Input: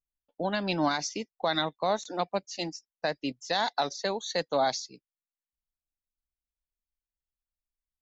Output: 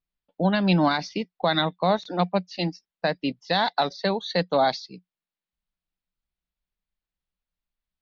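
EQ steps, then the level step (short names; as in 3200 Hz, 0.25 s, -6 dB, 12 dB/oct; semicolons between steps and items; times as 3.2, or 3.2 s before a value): steep low-pass 4600 Hz 36 dB/oct; bell 180 Hz +11.5 dB 0.31 oct; +5.0 dB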